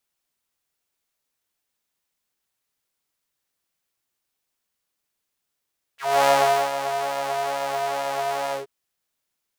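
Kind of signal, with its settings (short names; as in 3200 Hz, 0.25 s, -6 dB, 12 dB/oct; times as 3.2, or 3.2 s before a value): synth patch with pulse-width modulation C#3, detune 28 cents, noise -29 dB, filter highpass, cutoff 370 Hz, Q 3.9, filter envelope 3 oct, filter decay 0.07 s, filter sustain 30%, attack 0.278 s, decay 0.46 s, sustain -10.5 dB, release 0.14 s, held 2.54 s, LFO 2.3 Hz, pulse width 43%, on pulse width 7%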